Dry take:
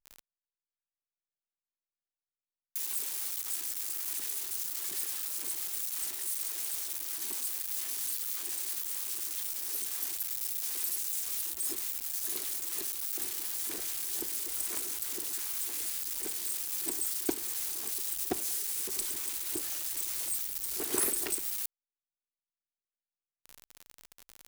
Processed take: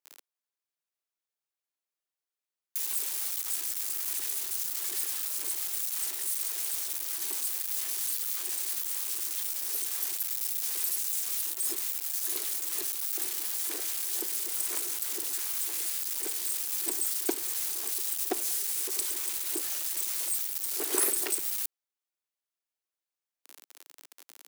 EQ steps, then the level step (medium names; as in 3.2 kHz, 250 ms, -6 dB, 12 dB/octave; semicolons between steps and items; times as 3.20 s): high-pass 310 Hz 24 dB/octave; +3.0 dB